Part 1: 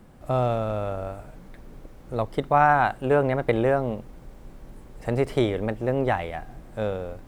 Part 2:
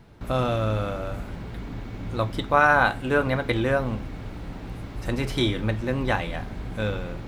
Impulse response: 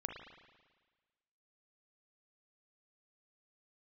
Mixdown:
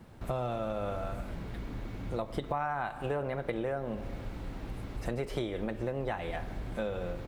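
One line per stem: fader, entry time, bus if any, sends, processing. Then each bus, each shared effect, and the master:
-6.5 dB, 0.00 s, send -7 dB, dry
-5.0 dB, 2.6 ms, polarity flipped, no send, compressor, threshold -28 dBFS, peak gain reduction 14.5 dB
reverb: on, RT60 1.4 s, pre-delay 36 ms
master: compressor 6:1, threshold -30 dBFS, peak gain reduction 12 dB

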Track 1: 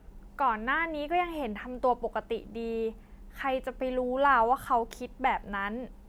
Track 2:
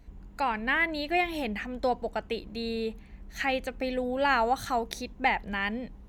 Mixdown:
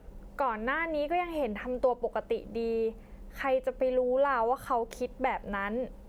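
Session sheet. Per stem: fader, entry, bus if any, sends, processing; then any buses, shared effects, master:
+1.0 dB, 0.00 s, no send, bell 530 Hz +9.5 dB 0.46 oct
-17.0 dB, 0.00 s, no send, dry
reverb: off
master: compressor 2:1, threshold -29 dBFS, peak gain reduction 8.5 dB

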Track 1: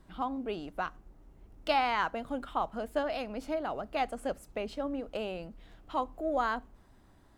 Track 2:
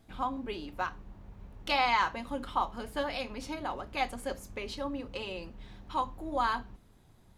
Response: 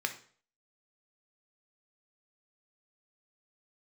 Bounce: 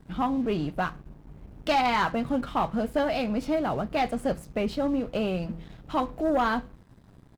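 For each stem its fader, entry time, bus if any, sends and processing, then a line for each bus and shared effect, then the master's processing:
-2.5 dB, 0.00 s, no send, bell 140 Hz +15 dB 1.6 oct; de-hum 165.4 Hz, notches 3
-12.0 dB, 8.6 ms, send -11.5 dB, steep low-pass 5800 Hz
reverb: on, RT60 0.45 s, pre-delay 3 ms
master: sample leveller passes 2

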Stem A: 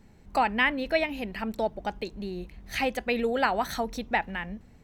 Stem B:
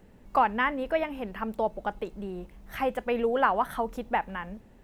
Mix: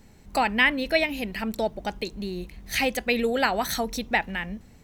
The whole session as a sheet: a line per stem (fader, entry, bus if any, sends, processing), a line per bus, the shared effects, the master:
+2.0 dB, 0.00 s, no send, high shelf 3700 Hz +9.5 dB
-11.0 dB, 0.00 s, no send, dry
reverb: off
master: dry

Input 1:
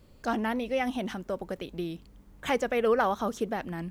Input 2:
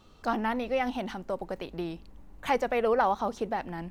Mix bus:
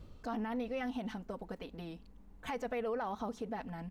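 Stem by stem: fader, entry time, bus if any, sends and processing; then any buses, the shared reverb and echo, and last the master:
-2.0 dB, 0.00 s, no send, tilt -2 dB/oct; negative-ratio compressor -27 dBFS; auto duck -12 dB, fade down 0.30 s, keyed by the second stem
-9.0 dB, 4.7 ms, no send, dry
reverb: off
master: limiter -29.5 dBFS, peak gain reduction 7 dB

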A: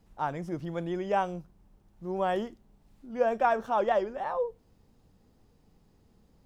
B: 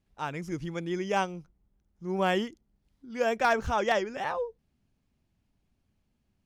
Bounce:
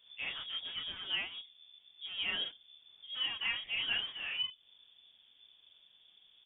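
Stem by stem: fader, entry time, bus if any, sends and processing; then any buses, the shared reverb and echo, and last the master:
+1.0 dB, 0.00 s, no send, high shelf 3300 Hz +10.5 dB; compressor 2.5:1, threshold -39 dBFS, peak gain reduction 13 dB
-2.0 dB, 10 ms, no send, resonant low shelf 150 Hz -13 dB, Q 1.5; notch 960 Hz, Q 8; sample gate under -33.5 dBFS; auto duck -7 dB, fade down 0.90 s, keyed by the first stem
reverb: off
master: chorus 1.7 Hz, depth 6.9 ms; inverted band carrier 3500 Hz

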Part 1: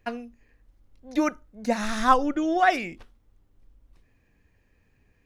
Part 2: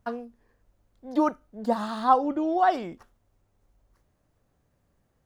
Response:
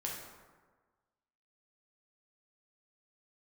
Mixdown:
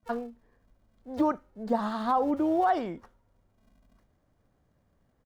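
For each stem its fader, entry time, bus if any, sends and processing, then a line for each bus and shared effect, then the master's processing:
-15.5 dB, 0.00 s, send -21 dB, loudest bins only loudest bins 4; polarity switched at an audio rate 220 Hz; auto duck -12 dB, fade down 1.70 s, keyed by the second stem
+0.5 dB, 29 ms, polarity flipped, no send, high shelf 4100 Hz -9.5 dB; notch 2600 Hz, Q 15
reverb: on, RT60 1.4 s, pre-delay 3 ms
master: limiter -16.5 dBFS, peak gain reduction 9.5 dB

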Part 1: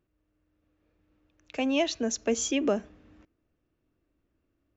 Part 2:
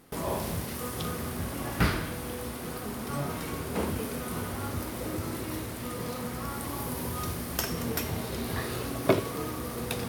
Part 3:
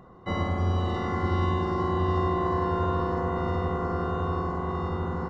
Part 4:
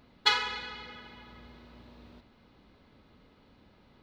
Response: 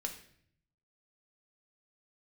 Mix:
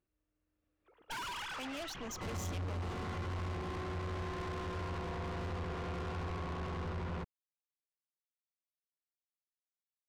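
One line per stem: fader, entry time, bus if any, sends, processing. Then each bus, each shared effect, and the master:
-6.0 dB, 0.00 s, no send, low shelf 280 Hz -8 dB
off
+1.0 dB, 1.95 s, send -10 dB, compressor 2:1, threshold -33 dBFS, peak gain reduction 7 dB; running maximum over 5 samples
-4.0 dB, 0.85 s, send -10.5 dB, sine-wave speech; bell 2100 Hz -6.5 dB 0.35 oct; AGC gain up to 9 dB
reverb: on, RT60 0.60 s, pre-delay 4 ms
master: tube stage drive 40 dB, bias 0.45; low shelf 97 Hz +8.5 dB

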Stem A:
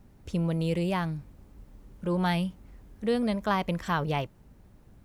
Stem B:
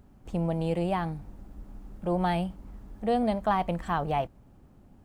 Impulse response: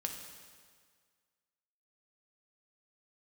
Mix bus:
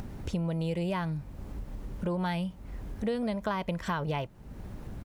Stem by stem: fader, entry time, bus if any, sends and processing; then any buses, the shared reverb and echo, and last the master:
+2.5 dB, 0.00 s, no send, high shelf 6500 Hz -5.5 dB; upward compressor, threshold -31 dBFS
-9.0 dB, 1.9 ms, no send, tilt +2 dB/oct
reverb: off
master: compressor 5:1, threshold -28 dBFS, peak gain reduction 9 dB

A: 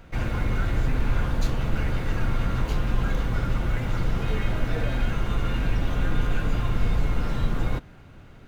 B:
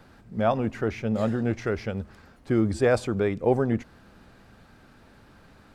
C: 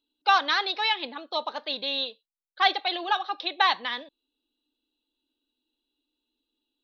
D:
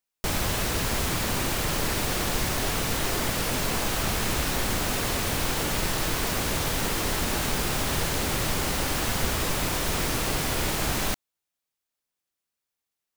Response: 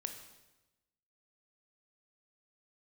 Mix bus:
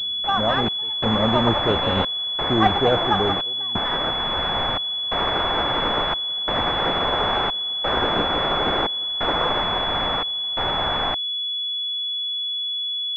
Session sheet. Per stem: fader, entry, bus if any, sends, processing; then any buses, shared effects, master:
+2.5 dB, 1.85 s, muted 4.11–5.13, no send, spectral gate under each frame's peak -25 dB weak
+1.5 dB, 0.00 s, no send, auto duck -8 dB, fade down 0.55 s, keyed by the third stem
-3.0 dB, 0.00 s, no send, dry
-5.0 dB, 0.00 s, no send, resonant low shelf 490 Hz -12.5 dB, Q 1.5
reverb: off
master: AGC gain up to 11.5 dB; step gate "xxxx..xx" 88 bpm -24 dB; pulse-width modulation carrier 3400 Hz

